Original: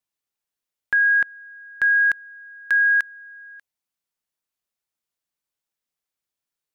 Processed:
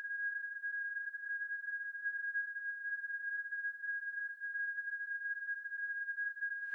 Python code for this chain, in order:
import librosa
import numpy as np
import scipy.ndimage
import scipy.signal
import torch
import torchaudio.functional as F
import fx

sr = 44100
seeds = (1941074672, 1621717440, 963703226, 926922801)

y = fx.paulstretch(x, sr, seeds[0], factor=35.0, window_s=0.1, from_s=2.47)
y = F.gain(torch.from_numpy(y), 1.0).numpy()